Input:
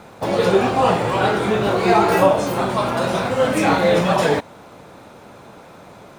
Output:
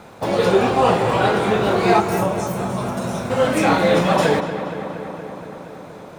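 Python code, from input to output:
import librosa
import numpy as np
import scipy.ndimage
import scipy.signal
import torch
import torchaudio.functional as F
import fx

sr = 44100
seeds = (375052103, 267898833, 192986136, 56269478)

y = fx.spec_box(x, sr, start_s=2.0, length_s=1.3, low_hz=240.0, high_hz=5200.0, gain_db=-9)
y = fx.echo_filtered(y, sr, ms=235, feedback_pct=77, hz=3900.0, wet_db=-11)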